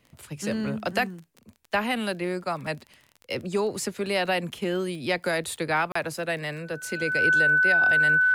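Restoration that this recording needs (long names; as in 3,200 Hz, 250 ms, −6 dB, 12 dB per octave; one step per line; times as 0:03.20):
click removal
notch filter 1,500 Hz, Q 30
repair the gap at 0:05.92, 34 ms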